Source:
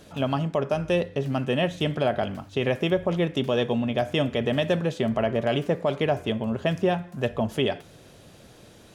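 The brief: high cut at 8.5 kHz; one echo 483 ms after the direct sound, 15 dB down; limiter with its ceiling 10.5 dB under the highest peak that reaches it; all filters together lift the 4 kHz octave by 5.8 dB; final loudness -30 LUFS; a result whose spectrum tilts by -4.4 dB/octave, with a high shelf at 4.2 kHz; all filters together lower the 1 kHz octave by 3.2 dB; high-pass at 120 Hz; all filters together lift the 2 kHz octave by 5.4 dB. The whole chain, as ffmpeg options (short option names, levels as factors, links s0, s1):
-af "highpass=120,lowpass=8500,equalizer=f=1000:t=o:g=-7,equalizer=f=2000:t=o:g=6.5,equalizer=f=4000:t=o:g=3.5,highshelf=f=4200:g=4,alimiter=limit=0.119:level=0:latency=1,aecho=1:1:483:0.178"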